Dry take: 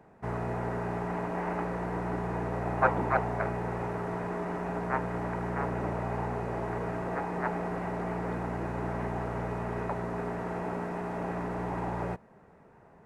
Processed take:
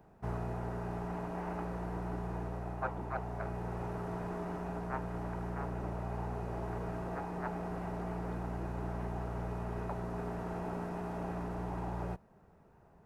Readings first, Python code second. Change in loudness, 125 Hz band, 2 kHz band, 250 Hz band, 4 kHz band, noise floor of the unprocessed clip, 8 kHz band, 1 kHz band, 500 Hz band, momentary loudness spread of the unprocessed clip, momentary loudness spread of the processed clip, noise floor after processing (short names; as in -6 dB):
-6.5 dB, -4.0 dB, -10.5 dB, -5.5 dB, -5.5 dB, -57 dBFS, n/a, -8.0 dB, -7.5 dB, 5 LU, 1 LU, -62 dBFS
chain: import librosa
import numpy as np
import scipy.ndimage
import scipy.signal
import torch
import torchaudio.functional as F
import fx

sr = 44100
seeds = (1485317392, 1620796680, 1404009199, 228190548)

y = fx.graphic_eq(x, sr, hz=(125, 250, 500, 1000, 2000, 4000, 8000), db=(-5, -7, -8, -6, -12, -3, -7))
y = fx.rider(y, sr, range_db=10, speed_s=0.5)
y = y * librosa.db_to_amplitude(2.0)